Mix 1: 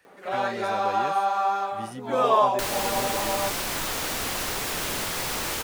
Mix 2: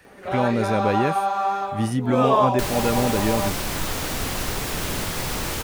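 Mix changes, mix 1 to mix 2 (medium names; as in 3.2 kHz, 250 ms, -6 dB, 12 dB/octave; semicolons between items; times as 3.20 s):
speech +9.0 dB; master: add bass shelf 260 Hz +11.5 dB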